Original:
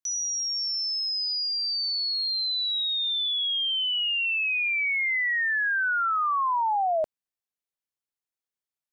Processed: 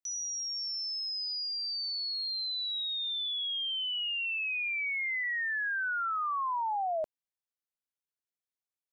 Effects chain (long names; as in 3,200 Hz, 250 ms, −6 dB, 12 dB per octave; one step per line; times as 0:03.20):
0:04.38–0:05.24: Butterworth high-pass 490 Hz 96 dB per octave
level −7 dB